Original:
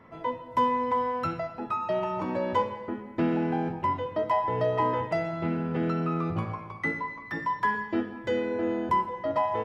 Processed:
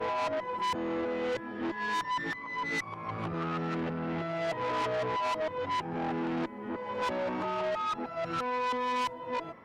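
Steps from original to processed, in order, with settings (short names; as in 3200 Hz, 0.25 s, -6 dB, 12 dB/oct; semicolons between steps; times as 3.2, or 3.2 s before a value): whole clip reversed; tube stage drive 31 dB, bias 0.3; low shelf 140 Hz -10 dB; gain +3 dB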